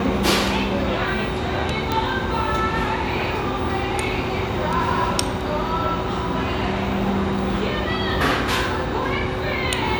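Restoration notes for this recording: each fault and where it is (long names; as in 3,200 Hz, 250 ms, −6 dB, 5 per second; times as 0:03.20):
0:01.92: click −8 dBFS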